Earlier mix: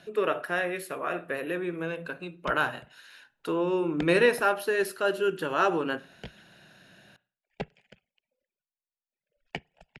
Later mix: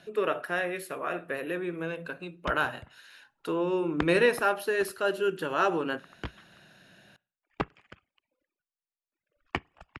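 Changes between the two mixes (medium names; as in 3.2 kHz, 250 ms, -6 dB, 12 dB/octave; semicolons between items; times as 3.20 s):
speech: send -6.0 dB; background: remove static phaser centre 310 Hz, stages 6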